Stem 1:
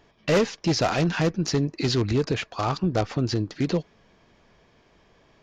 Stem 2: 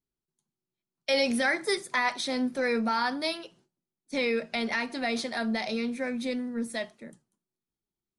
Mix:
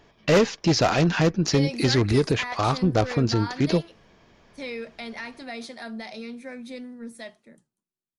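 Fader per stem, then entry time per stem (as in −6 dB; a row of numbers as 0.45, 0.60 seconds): +2.5, −6.5 decibels; 0.00, 0.45 seconds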